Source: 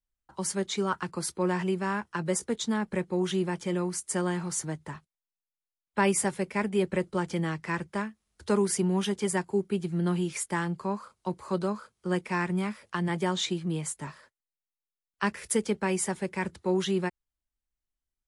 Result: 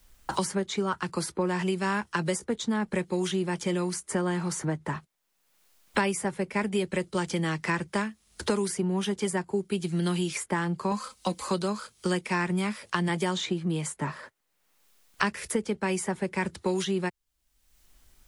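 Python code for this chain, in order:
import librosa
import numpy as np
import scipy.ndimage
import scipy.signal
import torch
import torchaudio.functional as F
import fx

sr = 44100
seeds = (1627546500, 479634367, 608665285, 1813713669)

y = fx.comb(x, sr, ms=3.9, depth=0.79, at=(10.91, 11.48))
y = fx.band_squash(y, sr, depth_pct=100)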